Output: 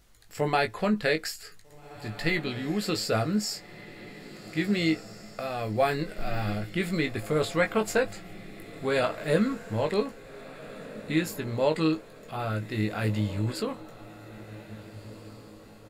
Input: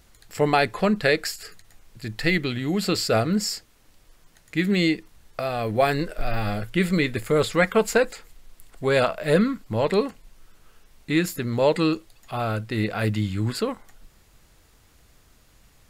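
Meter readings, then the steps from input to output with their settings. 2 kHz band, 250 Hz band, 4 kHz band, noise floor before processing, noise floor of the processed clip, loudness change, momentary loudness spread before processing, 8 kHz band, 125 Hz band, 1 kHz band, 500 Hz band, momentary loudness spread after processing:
−5.0 dB, −4.5 dB, −5.0 dB, −57 dBFS, −49 dBFS, −5.0 dB, 11 LU, −5.0 dB, −4.5 dB, −5.0 dB, −5.0 dB, 19 LU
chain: double-tracking delay 19 ms −6 dB
on a send: feedback delay with all-pass diffusion 1,690 ms, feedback 43%, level −15.5 dB
on the sum: level −6 dB

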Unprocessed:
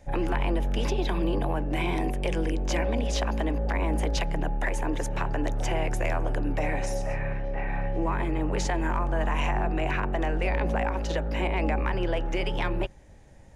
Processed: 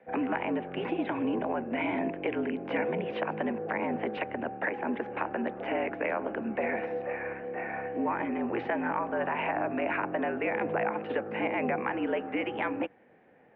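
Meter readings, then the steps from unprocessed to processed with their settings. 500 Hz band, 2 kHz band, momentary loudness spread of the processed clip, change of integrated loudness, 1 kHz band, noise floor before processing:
−0.5 dB, −0.5 dB, 4 LU, −3.0 dB, −1.0 dB, −48 dBFS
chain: single-sideband voice off tune −62 Hz 270–2,700 Hz

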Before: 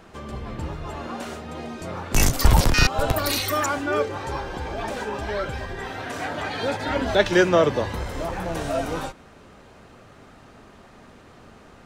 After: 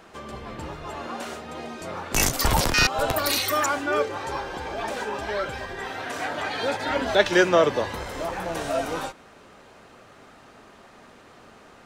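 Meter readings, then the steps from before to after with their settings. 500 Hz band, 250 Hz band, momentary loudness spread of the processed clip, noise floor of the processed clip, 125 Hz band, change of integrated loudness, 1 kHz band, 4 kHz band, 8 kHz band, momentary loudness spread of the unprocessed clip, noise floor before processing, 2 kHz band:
−0.5 dB, −3.0 dB, 16 LU, −51 dBFS, −7.5 dB, −0.5 dB, +0.5 dB, +1.0 dB, +1.0 dB, 15 LU, −49 dBFS, +1.0 dB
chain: low-shelf EQ 210 Hz −11 dB
level +1 dB

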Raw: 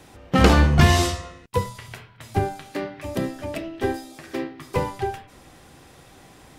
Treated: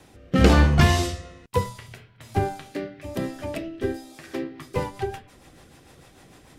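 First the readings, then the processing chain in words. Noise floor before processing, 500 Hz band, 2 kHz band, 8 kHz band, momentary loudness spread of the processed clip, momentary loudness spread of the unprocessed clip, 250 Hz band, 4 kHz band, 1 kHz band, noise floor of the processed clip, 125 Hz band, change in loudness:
−50 dBFS, −1.5 dB, −2.5 dB, −3.5 dB, 18 LU, 18 LU, −1.0 dB, −3.0 dB, −3.0 dB, −53 dBFS, −1.0 dB, −1.5 dB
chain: rotating-speaker cabinet horn 1.1 Hz, later 6.7 Hz, at 0:04.11

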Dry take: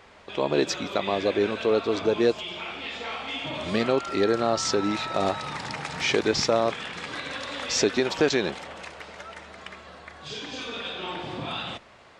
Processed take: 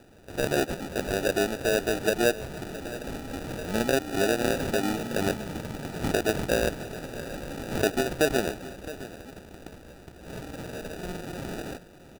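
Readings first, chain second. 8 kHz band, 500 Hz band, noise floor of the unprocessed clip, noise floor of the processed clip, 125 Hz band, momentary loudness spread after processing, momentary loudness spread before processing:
−1.5 dB, −2.5 dB, −52 dBFS, −50 dBFS, +2.5 dB, 16 LU, 17 LU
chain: phase distortion by the signal itself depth 0.086 ms
decimation without filtering 41×
on a send: single-tap delay 666 ms −16 dB
on the sum: level −2 dB

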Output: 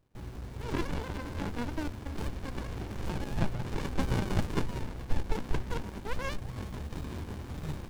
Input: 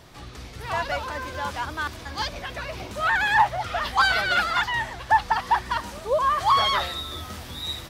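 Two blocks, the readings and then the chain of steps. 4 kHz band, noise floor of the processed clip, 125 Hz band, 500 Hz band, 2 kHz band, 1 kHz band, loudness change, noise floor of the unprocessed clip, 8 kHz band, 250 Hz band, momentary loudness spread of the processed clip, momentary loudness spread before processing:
−18.5 dB, −44 dBFS, +3.5 dB, −8.5 dB, −19.5 dB, −20.0 dB, −12.5 dB, −41 dBFS, −9.5 dB, +5.0 dB, 8 LU, 14 LU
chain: gain on a spectral selection 0:06.36–0:06.93, 280–5,400 Hz −13 dB
bit reduction 9 bits
noise gate with hold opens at −38 dBFS
dynamic equaliser 1,100 Hz, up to −3 dB, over −34 dBFS, Q 3.7
windowed peak hold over 65 samples

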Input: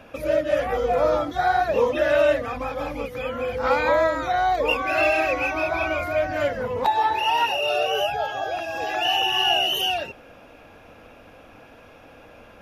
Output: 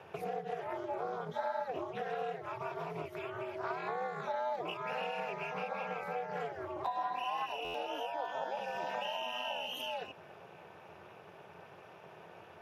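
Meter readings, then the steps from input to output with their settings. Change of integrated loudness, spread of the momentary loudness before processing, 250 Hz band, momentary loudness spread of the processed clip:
−16.0 dB, 9 LU, −15.5 dB, 17 LU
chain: downward compressor 5 to 1, threshold −31 dBFS, peak gain reduction 14.5 dB
Chebyshev high-pass with heavy ripple 210 Hz, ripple 6 dB
ring modulation 130 Hz
buffer that repeats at 0:07.64, samples 512, times 8
highs frequency-modulated by the lows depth 0.14 ms

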